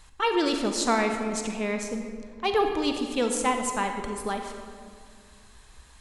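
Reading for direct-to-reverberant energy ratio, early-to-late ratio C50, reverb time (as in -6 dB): 4.5 dB, 5.0 dB, 2.1 s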